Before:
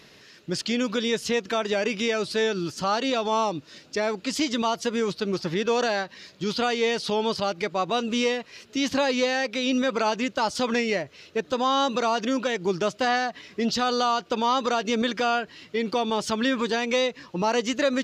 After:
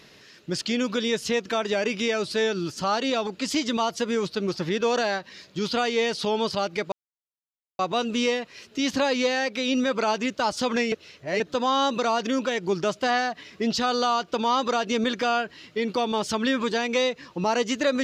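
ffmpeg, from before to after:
-filter_complex "[0:a]asplit=5[a][b][c][d][e];[a]atrim=end=3.272[f];[b]atrim=start=4.118:end=7.77,asetpts=PTS-STARTPTS,afade=t=out:st=3.648:d=0.004:c=hsin,apad=pad_dur=0.87[g];[c]atrim=start=7.77:end=10.902,asetpts=PTS-STARTPTS,afade=t=in:d=0.004:c=hsin[h];[d]atrim=start=10.898:end=11.382,asetpts=PTS-STARTPTS,areverse[i];[e]atrim=start=11.378[j];[g][h]concat=n=2:v=0:a=1[k];[f][k]acrossfade=d=0.004:c1=hsin:c2=hsin[l];[l][i]acrossfade=d=0.004:c1=hsin:c2=hsin[m];[m][j]acrossfade=d=0.004:c1=hsin:c2=hsin"

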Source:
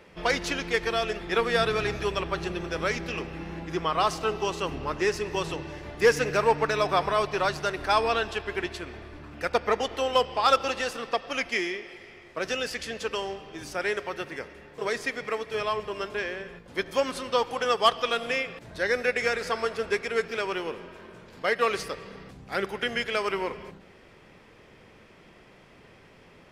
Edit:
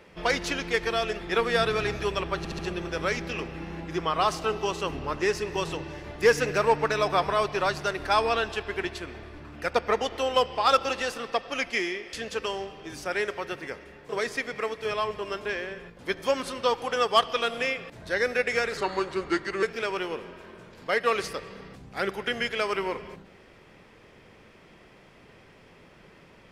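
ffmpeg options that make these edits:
-filter_complex "[0:a]asplit=7[a][b][c][d][e][f][g];[a]atrim=end=2.452[h];[b]atrim=start=2.378:end=2.452[i];[c]atrim=start=2.378:end=2.452[j];[d]atrim=start=2.378:end=11.922[k];[e]atrim=start=12.818:end=19.464[l];[f]atrim=start=19.46:end=20.18,asetpts=PTS-STARTPTS,asetrate=37044,aresample=44100[m];[g]atrim=start=20.176[n];[h][i]acrossfade=d=0.004:c1=hsin:c2=hsin[o];[o][j]acrossfade=d=0.004:c1=hsin:c2=hsin[p];[p][k]acrossfade=d=0.004:c1=hsin:c2=hsin[q];[q][l]acrossfade=d=0.004:c1=hsin:c2=hsin[r];[r][m]acrossfade=d=0.004:c1=hsin:c2=hsin[s];[s][n]acrossfade=d=0.004:c1=hsin:c2=hsin"

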